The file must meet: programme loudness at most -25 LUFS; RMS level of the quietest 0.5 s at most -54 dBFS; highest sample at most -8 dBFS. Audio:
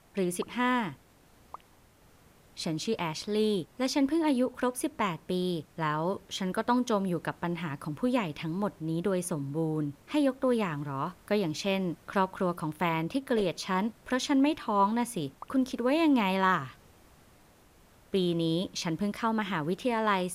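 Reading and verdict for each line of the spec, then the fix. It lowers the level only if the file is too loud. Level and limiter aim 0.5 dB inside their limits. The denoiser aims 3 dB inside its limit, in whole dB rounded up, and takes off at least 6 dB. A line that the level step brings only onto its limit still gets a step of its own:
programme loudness -30.0 LUFS: OK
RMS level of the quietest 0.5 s -60 dBFS: OK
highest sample -14.0 dBFS: OK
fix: none

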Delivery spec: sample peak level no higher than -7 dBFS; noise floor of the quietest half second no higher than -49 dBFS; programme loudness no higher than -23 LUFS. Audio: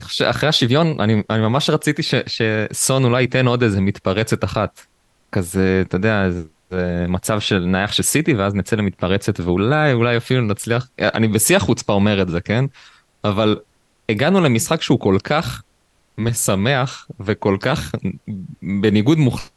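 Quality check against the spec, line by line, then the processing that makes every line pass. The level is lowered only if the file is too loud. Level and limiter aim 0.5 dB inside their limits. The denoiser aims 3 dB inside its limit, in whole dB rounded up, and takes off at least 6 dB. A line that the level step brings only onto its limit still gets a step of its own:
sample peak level -3.5 dBFS: fail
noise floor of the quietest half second -61 dBFS: OK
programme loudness -18.0 LUFS: fail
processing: gain -5.5 dB

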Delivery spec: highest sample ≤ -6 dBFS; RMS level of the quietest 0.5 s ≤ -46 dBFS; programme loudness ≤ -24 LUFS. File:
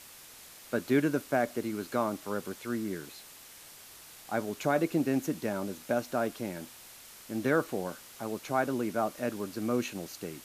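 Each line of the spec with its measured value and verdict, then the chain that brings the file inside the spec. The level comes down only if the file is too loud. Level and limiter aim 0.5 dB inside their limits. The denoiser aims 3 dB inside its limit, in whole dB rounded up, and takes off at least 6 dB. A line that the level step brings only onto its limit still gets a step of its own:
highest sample -14.5 dBFS: OK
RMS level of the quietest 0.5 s -51 dBFS: OK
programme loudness -32.5 LUFS: OK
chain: none

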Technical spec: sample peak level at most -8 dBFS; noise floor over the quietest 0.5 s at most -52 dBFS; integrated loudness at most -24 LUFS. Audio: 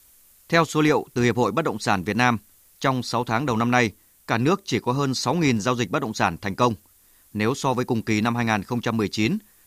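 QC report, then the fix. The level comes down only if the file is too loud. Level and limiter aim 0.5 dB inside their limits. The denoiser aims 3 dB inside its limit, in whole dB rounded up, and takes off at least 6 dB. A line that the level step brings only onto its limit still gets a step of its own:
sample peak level -4.5 dBFS: fail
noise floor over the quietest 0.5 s -56 dBFS: OK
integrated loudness -23.0 LUFS: fail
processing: gain -1.5 dB; limiter -8.5 dBFS

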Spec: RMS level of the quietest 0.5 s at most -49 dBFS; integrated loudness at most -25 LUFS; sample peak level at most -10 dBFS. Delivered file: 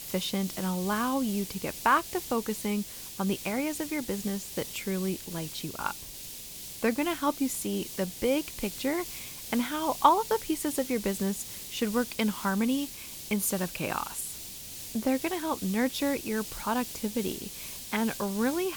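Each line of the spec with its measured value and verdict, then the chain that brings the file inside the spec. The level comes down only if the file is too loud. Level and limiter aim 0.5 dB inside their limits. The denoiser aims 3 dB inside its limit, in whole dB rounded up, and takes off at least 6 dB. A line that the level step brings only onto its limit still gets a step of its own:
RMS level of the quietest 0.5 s -43 dBFS: fail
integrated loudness -30.5 LUFS: OK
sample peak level -7.0 dBFS: fail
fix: denoiser 9 dB, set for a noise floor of -43 dBFS; limiter -10.5 dBFS

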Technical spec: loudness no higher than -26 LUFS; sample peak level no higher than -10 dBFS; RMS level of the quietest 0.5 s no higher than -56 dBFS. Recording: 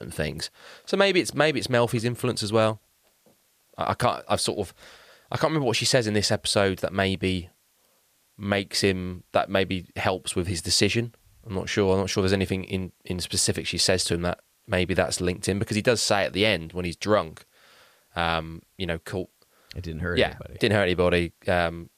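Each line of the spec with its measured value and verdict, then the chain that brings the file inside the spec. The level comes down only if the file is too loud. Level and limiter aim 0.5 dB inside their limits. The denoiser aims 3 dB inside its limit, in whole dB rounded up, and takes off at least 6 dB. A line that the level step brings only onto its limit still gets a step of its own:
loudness -25.0 LUFS: fail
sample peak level -6.5 dBFS: fail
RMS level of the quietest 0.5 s -65 dBFS: OK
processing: gain -1.5 dB; limiter -10.5 dBFS

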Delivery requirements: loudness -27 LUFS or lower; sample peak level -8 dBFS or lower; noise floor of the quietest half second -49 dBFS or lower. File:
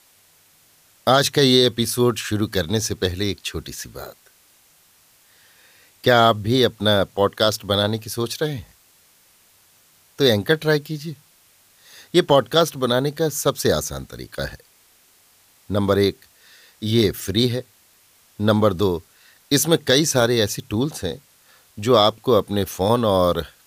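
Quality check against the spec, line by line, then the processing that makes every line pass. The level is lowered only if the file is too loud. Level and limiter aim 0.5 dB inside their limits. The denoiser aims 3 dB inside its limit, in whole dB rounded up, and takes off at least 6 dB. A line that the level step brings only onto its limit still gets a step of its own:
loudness -20.0 LUFS: fail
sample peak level -3.5 dBFS: fail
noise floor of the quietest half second -56 dBFS: OK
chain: gain -7.5 dB

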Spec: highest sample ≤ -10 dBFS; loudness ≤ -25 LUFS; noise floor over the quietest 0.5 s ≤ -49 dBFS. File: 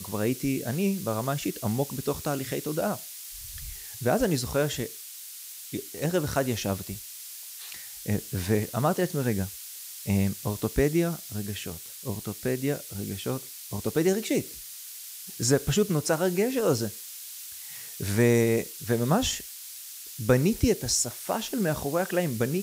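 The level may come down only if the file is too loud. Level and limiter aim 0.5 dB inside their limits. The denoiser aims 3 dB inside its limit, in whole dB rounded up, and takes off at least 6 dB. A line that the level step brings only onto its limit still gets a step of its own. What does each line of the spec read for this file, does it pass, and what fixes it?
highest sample -9.5 dBFS: fail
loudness -28.5 LUFS: OK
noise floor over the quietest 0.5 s -42 dBFS: fail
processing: denoiser 10 dB, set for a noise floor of -42 dBFS; limiter -10.5 dBFS

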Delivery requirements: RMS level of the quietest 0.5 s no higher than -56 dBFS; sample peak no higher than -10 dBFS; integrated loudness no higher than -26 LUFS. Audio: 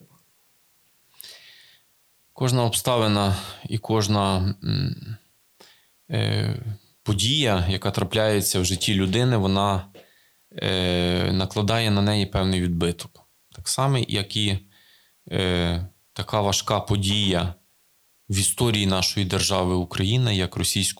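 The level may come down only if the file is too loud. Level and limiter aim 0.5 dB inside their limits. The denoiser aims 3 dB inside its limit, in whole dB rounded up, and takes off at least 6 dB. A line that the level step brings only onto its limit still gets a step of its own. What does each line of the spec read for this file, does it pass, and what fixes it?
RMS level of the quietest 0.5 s -63 dBFS: OK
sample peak -3.5 dBFS: fail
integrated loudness -23.0 LUFS: fail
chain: gain -3.5 dB; limiter -10.5 dBFS

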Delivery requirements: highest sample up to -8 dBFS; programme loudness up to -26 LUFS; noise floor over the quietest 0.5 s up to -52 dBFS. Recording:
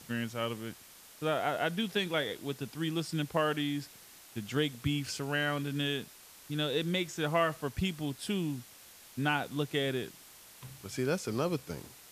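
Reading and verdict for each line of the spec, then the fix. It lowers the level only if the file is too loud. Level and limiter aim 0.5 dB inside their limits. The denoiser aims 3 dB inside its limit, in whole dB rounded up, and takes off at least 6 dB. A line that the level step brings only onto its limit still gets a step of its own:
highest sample -16.0 dBFS: OK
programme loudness -33.5 LUFS: OK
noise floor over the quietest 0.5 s -54 dBFS: OK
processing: none

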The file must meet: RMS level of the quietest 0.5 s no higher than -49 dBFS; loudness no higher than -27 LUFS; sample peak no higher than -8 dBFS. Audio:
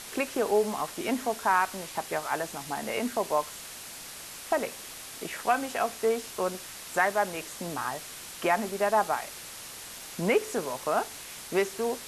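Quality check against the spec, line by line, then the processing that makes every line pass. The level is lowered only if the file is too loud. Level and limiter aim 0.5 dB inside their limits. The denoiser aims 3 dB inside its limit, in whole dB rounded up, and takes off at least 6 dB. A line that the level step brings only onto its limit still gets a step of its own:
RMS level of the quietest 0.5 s -43 dBFS: fail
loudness -30.0 LUFS: OK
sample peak -10.5 dBFS: OK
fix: denoiser 9 dB, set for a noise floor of -43 dBFS

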